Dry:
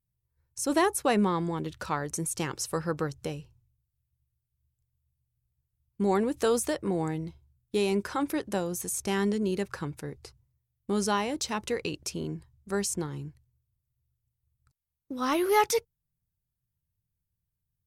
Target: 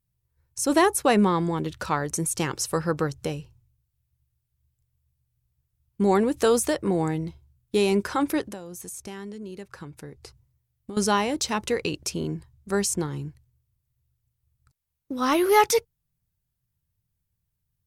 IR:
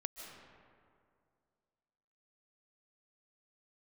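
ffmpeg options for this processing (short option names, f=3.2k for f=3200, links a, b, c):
-filter_complex "[0:a]asettb=1/sr,asplit=3[a][b][c];[a]atrim=end=8.464[d];[b]atrim=start=8.46:end=10.97,asetpts=PTS-STARTPTS,afade=t=in:d=0.004:c=qsin,afade=t=out:st=2.506:d=0.004:c=qsin,acompressor=threshold=-43dB:ratio=4[e];[c]atrim=start=10.966[f];[d][e]acrossfade=d=0.004:c1=hsin:c2=qsin[g];[g][f]acrossfade=d=0.004:c1=qsin:c2=hsin,volume=5dB"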